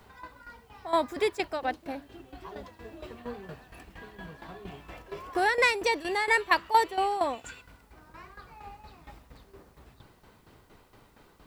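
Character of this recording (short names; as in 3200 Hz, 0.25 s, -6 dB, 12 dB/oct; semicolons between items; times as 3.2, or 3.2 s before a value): tremolo saw down 4.3 Hz, depth 75%; a quantiser's noise floor 12-bit, dither triangular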